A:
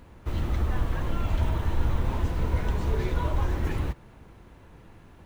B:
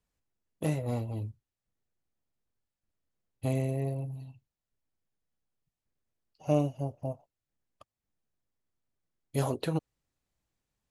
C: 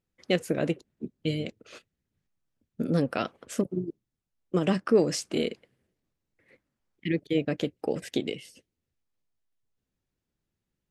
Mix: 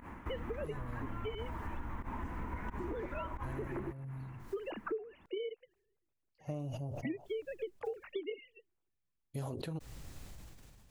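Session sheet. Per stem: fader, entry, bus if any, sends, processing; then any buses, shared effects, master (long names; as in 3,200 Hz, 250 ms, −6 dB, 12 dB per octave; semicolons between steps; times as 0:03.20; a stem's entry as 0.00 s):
+0.5 dB, 0.00 s, no send, octave-band graphic EQ 125/250/500/1,000/2,000/4,000 Hz −3/+10/−4/+10/+10/−11 dB; fake sidechain pumping 89 BPM, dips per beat 1, −19 dB, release 87 ms; automatic ducking −9 dB, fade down 0.20 s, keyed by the third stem
−10.0 dB, 0.00 s, no send, low-shelf EQ 160 Hz +9 dB; level that may fall only so fast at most 26 dB per second
−6.5 dB, 0.00 s, no send, three sine waves on the formant tracks; automatic gain control gain up to 8 dB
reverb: not used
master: downward compressor 12 to 1, threshold −36 dBFS, peak gain reduction 23.5 dB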